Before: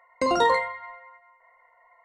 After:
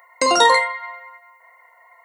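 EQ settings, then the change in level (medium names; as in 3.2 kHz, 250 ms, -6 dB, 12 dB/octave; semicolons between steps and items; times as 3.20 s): RIAA curve recording; +7.0 dB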